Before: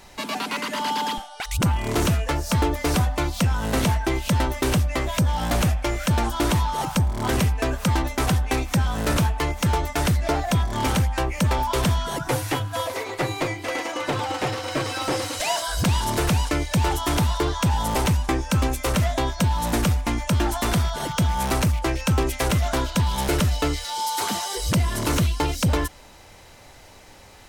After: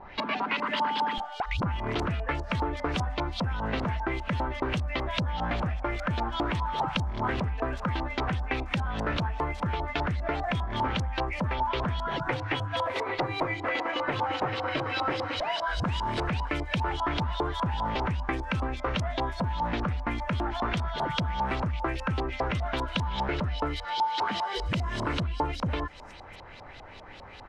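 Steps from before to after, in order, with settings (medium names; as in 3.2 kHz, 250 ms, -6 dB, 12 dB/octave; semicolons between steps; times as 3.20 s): compression, threshold -28 dBFS, peak gain reduction 10 dB; bands offset in time lows, highs 480 ms, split 5.9 kHz; LFO low-pass saw up 5 Hz 810–4500 Hz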